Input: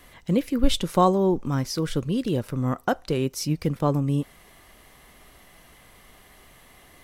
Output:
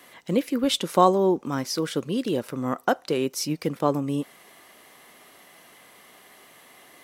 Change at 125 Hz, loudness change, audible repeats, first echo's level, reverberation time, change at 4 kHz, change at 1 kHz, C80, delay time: −7.5 dB, 0.0 dB, no echo audible, no echo audible, no reverb audible, +2.0 dB, +2.0 dB, no reverb audible, no echo audible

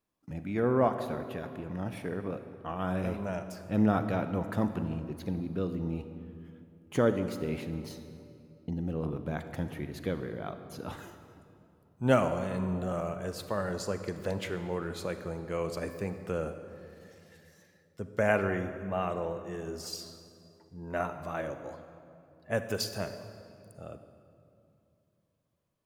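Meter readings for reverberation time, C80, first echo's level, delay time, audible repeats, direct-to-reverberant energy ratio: 2.7 s, 10.0 dB, no echo audible, no echo audible, no echo audible, 9.0 dB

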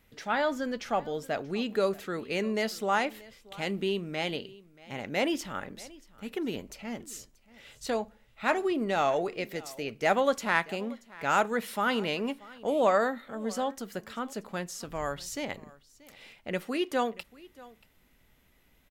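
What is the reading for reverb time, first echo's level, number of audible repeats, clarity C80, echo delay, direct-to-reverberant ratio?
no reverb audible, −21.5 dB, 1, no reverb audible, 632 ms, no reverb audible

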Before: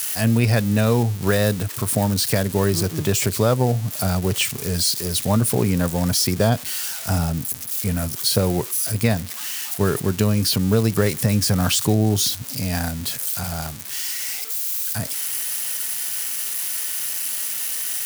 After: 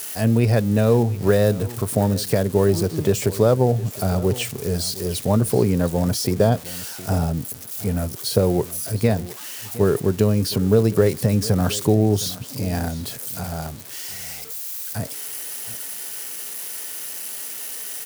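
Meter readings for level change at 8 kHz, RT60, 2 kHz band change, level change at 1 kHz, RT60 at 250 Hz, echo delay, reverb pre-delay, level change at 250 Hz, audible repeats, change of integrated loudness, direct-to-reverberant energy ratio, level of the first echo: −6.0 dB, no reverb audible, −5.0 dB, −1.0 dB, no reverb audible, 714 ms, no reverb audible, +0.5 dB, 1, −1.0 dB, no reverb audible, −17.5 dB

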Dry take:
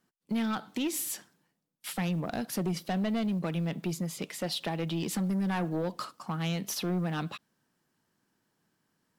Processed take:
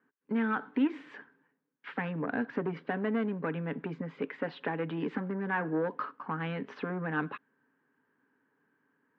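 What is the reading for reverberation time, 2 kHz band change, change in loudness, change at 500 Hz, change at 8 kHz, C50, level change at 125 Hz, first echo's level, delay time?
no reverb audible, +4.5 dB, −1.5 dB, +1.5 dB, below −35 dB, no reverb audible, −6.0 dB, no echo audible, no echo audible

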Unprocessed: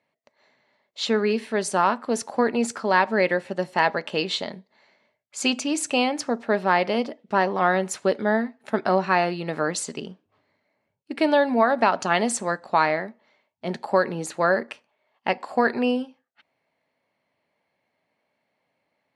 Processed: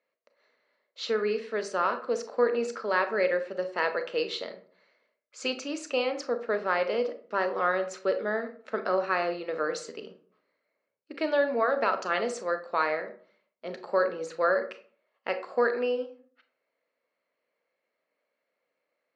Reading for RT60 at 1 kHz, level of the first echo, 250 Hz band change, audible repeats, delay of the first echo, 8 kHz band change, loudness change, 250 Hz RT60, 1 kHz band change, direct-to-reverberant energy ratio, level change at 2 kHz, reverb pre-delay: 0.45 s, no echo audible, −12.0 dB, no echo audible, no echo audible, −13.5 dB, −5.5 dB, 0.60 s, −7.5 dB, 8.5 dB, −5.5 dB, 28 ms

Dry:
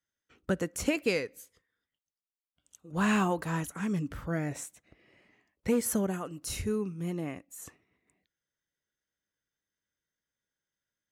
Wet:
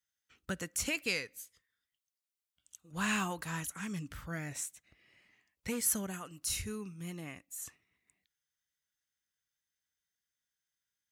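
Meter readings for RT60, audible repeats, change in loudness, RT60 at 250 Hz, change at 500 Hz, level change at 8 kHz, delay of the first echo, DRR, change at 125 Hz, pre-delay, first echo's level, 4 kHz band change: no reverb audible, no echo audible, −5.0 dB, no reverb audible, −12.0 dB, +2.5 dB, no echo audible, no reverb audible, −8.0 dB, no reverb audible, no echo audible, +1.5 dB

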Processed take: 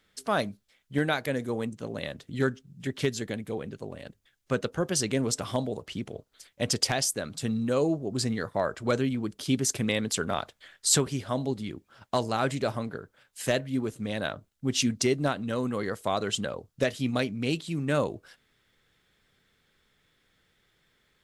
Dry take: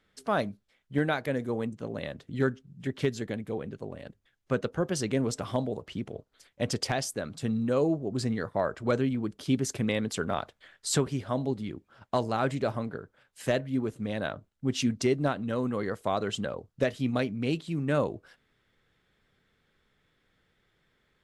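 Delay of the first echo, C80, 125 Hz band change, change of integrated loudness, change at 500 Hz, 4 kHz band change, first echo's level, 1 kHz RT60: no echo audible, no reverb audible, 0.0 dB, +1.5 dB, +0.5 dB, +6.0 dB, no echo audible, no reverb audible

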